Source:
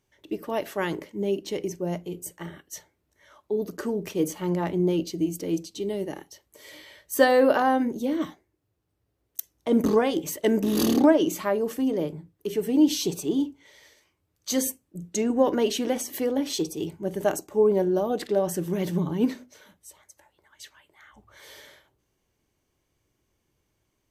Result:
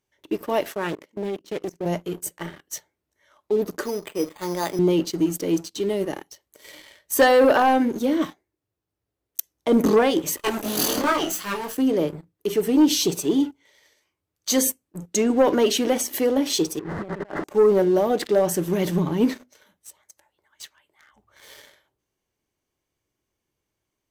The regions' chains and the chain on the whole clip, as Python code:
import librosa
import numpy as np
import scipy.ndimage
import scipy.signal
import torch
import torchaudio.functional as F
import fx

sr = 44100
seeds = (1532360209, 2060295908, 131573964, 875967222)

y = fx.chain(x, sr, fx.highpass(hz=69.0, slope=12),
    fx.level_steps(step_db=16),
    fx.doppler_dist(depth_ms=0.36), at=(0.72, 1.86))
y = fx.chain(y, sr, fx.highpass(hz=570.0, slope=6),
    fx.resample_bad(factor=8, down='filtered', up='hold'), at=(3.83, 4.79))
y = fx.chain(y, sr, fx.lower_of_two(delay_ms=0.66),
    fx.tilt_eq(slope=2.0),
    fx.detune_double(cents=14), at=(10.37, 11.77))
y = fx.chain(y, sr, fx.delta_mod(bps=32000, step_db=-33.0),
    fx.brickwall_lowpass(high_hz=2100.0),
    fx.over_compress(threshold_db=-37.0, ratio=-1.0), at=(16.79, 17.44))
y = fx.low_shelf(y, sr, hz=210.0, db=-5.5)
y = fx.leveller(y, sr, passes=2)
y = y * librosa.db_to_amplitude(-1.0)